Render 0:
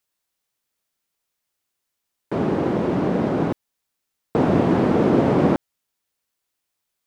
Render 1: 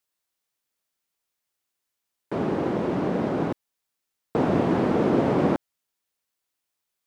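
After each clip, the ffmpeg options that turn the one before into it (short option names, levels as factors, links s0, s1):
-af "lowshelf=f=210:g=-3.5,volume=0.708"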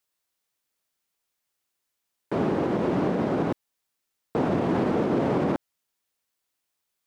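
-af "alimiter=limit=0.141:level=0:latency=1:release=64,volume=1.19"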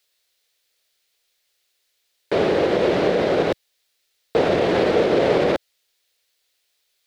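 -af "equalizer=f=125:t=o:w=1:g=-7,equalizer=f=250:t=o:w=1:g=-10,equalizer=f=500:t=o:w=1:g=7,equalizer=f=1000:t=o:w=1:g=-7,equalizer=f=2000:t=o:w=1:g=4,equalizer=f=4000:t=o:w=1:g=9,volume=2.37"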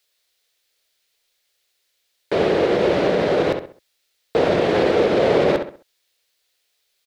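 -filter_complex "[0:a]asplit=2[s0][s1];[s1]adelay=66,lowpass=f=3300:p=1,volume=0.473,asplit=2[s2][s3];[s3]adelay=66,lowpass=f=3300:p=1,volume=0.35,asplit=2[s4][s5];[s5]adelay=66,lowpass=f=3300:p=1,volume=0.35,asplit=2[s6][s7];[s7]adelay=66,lowpass=f=3300:p=1,volume=0.35[s8];[s0][s2][s4][s6][s8]amix=inputs=5:normalize=0"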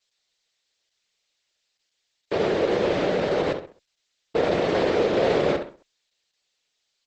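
-af "volume=0.596" -ar 48000 -c:a libopus -b:a 10k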